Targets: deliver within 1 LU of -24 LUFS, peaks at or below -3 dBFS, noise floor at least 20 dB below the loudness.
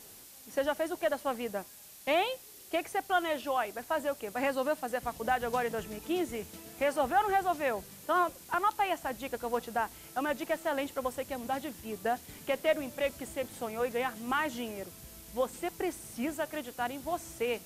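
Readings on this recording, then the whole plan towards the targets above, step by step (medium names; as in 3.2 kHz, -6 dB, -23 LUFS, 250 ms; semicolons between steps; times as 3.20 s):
noise floor -52 dBFS; noise floor target -53 dBFS; loudness -33.0 LUFS; peak level -16.5 dBFS; loudness target -24.0 LUFS
-> noise reduction 6 dB, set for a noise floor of -52 dBFS; trim +9 dB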